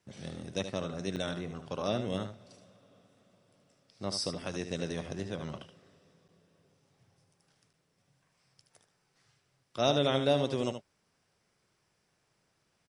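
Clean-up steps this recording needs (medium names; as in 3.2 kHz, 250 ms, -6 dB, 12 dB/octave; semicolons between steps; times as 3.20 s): interpolate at 1.16/6.28/7.73 s, 7.1 ms; inverse comb 76 ms -9 dB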